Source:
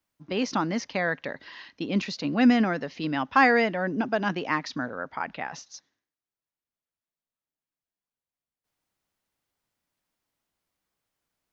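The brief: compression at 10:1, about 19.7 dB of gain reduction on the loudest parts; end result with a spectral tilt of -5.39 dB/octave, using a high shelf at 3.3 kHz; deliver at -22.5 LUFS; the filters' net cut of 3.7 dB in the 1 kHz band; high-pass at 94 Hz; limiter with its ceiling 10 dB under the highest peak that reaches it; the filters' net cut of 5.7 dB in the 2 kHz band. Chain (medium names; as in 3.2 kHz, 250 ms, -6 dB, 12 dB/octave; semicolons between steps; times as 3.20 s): high-pass 94 Hz; peaking EQ 1 kHz -3.5 dB; peaking EQ 2 kHz -3.5 dB; treble shelf 3.3 kHz -8 dB; compression 10:1, threshold -35 dBFS; trim +20 dB; peak limiter -11.5 dBFS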